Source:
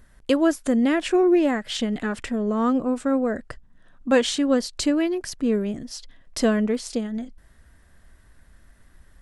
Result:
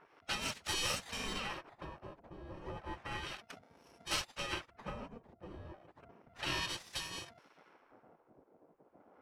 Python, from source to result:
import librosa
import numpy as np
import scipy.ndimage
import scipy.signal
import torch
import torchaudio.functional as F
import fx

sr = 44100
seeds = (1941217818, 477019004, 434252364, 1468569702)

p1 = fx.bit_reversed(x, sr, seeds[0], block=64)
p2 = fx.high_shelf(p1, sr, hz=2600.0, db=-12.0)
p3 = fx.spec_gate(p2, sr, threshold_db=-30, keep='weak')
p4 = fx.sample_hold(p3, sr, seeds[1], rate_hz=8000.0, jitter_pct=0)
p5 = p3 + (p4 * librosa.db_to_amplitude(-11.0))
p6 = fx.filter_lfo_lowpass(p5, sr, shape='sine', hz=0.32, low_hz=550.0, high_hz=6500.0, q=0.79)
y = p6 * librosa.db_to_amplitude(8.5)